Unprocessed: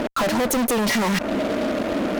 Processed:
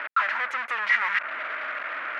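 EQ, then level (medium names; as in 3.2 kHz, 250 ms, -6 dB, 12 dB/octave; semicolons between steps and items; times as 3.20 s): Butterworth band-pass 1.7 kHz, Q 1.6; +5.0 dB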